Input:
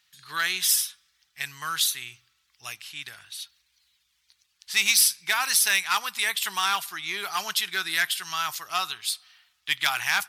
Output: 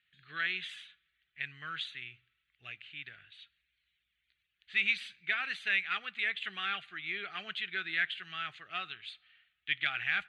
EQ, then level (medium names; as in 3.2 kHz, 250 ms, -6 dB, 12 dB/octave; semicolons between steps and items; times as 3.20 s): Chebyshev low-pass 3 kHz, order 2; distance through air 98 m; static phaser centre 2.3 kHz, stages 4; -3.5 dB